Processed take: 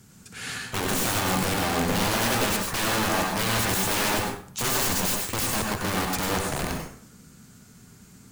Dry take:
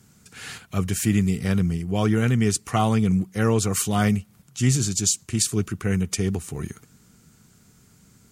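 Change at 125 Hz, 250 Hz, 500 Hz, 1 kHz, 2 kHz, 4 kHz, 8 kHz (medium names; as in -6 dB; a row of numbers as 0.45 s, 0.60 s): -9.5 dB, -7.0 dB, -1.0 dB, +4.0 dB, +6.0 dB, +5.0 dB, -1.5 dB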